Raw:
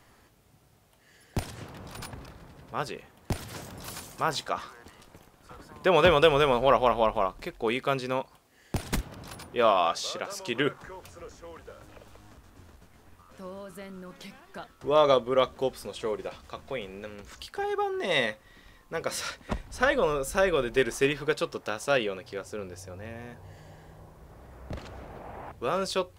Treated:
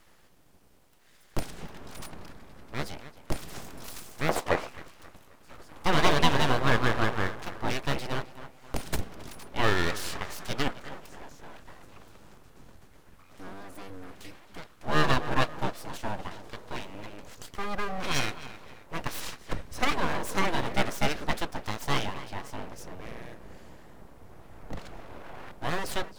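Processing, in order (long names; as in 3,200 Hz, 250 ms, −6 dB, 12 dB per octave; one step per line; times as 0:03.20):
sub-octave generator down 1 octave, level +1 dB
tape delay 266 ms, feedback 51%, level −12.5 dB, low-pass 1,800 Hz
full-wave rectification
0:04.29–0:04.69: parametric band 640 Hz +14 dB 2.1 octaves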